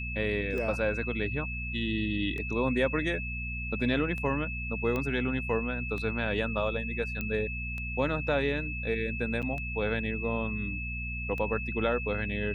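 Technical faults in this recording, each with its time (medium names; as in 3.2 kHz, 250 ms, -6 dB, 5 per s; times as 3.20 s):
hum 60 Hz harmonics 4 -37 dBFS
tick 33 1/3 rpm -25 dBFS
whine 2.6 kHz -36 dBFS
4.96 s: pop -19 dBFS
7.21 s: pop -19 dBFS
9.42–9.43 s: dropout 7.2 ms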